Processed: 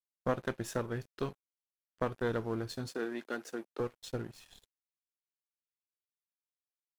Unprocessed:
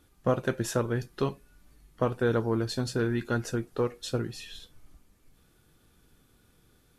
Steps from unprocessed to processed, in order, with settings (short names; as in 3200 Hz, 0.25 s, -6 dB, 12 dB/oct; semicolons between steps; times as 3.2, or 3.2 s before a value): added harmonics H 2 -10 dB, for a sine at -13 dBFS; crossover distortion -44.5 dBFS; 2.88–3.8 HPF 240 Hz 24 dB/oct; gain -6.5 dB